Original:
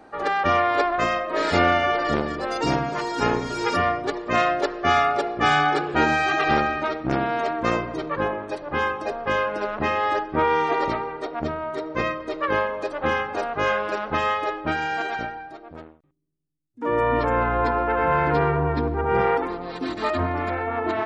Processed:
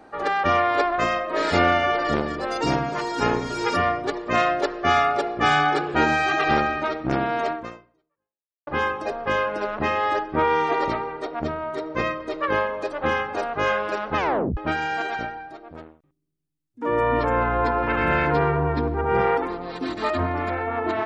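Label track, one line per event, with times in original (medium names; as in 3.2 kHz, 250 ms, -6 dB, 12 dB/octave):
7.520000	8.670000	fade out exponential
14.170000	14.170000	tape stop 0.40 s
17.820000	18.250000	spectral peaks clipped ceiling under each frame's peak by 16 dB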